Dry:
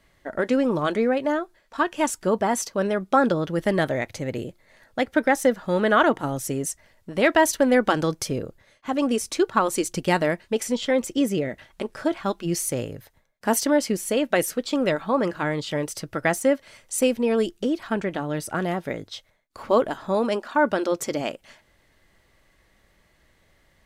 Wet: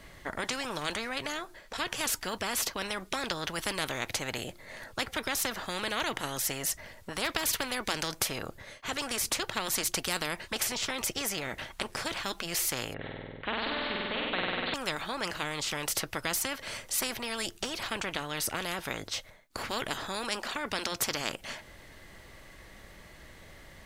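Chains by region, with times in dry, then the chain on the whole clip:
12.94–14.74 steep low-pass 3800 Hz 96 dB/oct + flutter echo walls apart 8.4 m, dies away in 1.4 s
whole clip: dynamic EQ 8300 Hz, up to -4 dB, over -44 dBFS, Q 1.5; spectral compressor 4:1; gain -6 dB

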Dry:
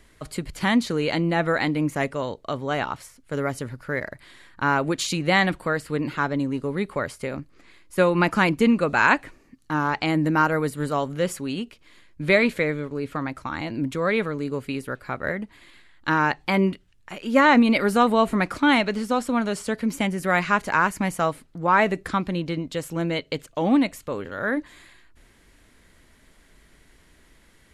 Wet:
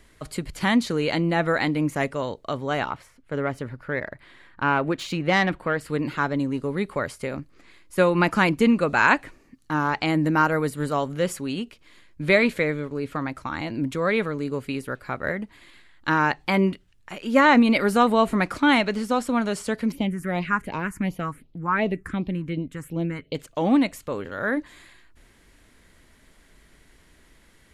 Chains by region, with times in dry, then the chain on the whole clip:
2.9–5.81 self-modulated delay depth 0.069 ms + tone controls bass -1 dB, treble -12 dB
19.92–23.35 high shelf 2400 Hz -6.5 dB + phaser stages 4, 2.7 Hz, lowest notch 570–1600 Hz
whole clip: dry

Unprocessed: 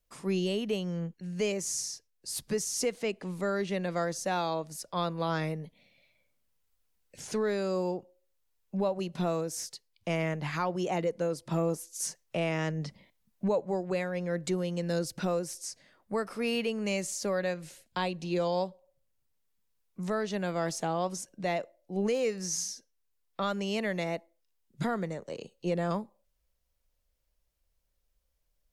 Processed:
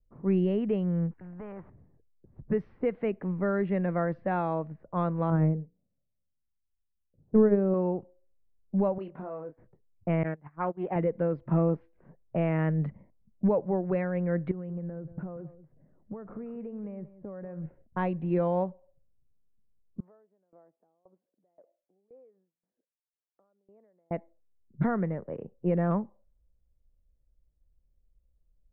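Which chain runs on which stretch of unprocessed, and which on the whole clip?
1.11–1.7 resonant low shelf 670 Hz -7 dB, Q 1.5 + spectral compressor 2:1
5.3–7.74 tilt shelf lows +9.5 dB, about 1100 Hz + notches 60/120/180/240/300/360/420/480/540 Hz + upward expander 2.5:1, over -37 dBFS
8.98–9.58 tone controls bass -15 dB, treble +9 dB + compressor 5:1, threshold -37 dBFS + doubler 26 ms -7 dB
10.23–10.96 gate -32 dBFS, range -24 dB + low shelf 210 Hz -9.5 dB + Doppler distortion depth 0.17 ms
14.51–17.66 compressor 12:1, threshold -39 dBFS + bell 150 Hz +6 dB 0.28 oct + echo 0.183 s -14 dB
20–24.11 compressor 4:1, threshold -47 dBFS + BPF 560–5200 Hz + dB-ramp tremolo decaying 1.9 Hz, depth 23 dB
whole clip: inverse Chebyshev low-pass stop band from 6400 Hz, stop band 60 dB; low-pass opened by the level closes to 450 Hz, open at -27 dBFS; low shelf 230 Hz +10 dB

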